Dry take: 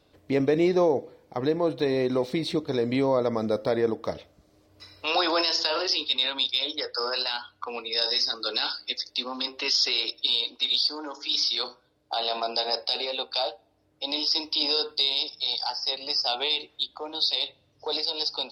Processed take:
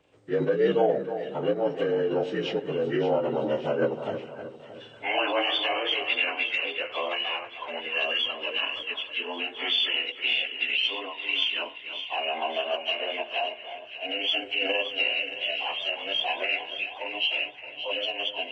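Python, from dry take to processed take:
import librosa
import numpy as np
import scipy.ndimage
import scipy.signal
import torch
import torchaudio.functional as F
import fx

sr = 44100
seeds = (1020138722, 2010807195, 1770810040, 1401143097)

y = fx.partial_stretch(x, sr, pct=80)
y = fx.formant_shift(y, sr, semitones=4)
y = fx.echo_split(y, sr, split_hz=1600.0, low_ms=312, high_ms=572, feedback_pct=52, wet_db=-10)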